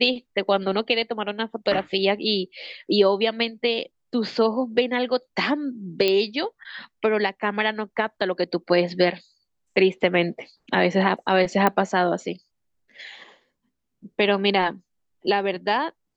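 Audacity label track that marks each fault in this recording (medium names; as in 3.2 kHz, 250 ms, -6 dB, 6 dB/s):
6.080000	6.080000	pop -9 dBFS
11.670000	11.670000	pop -7 dBFS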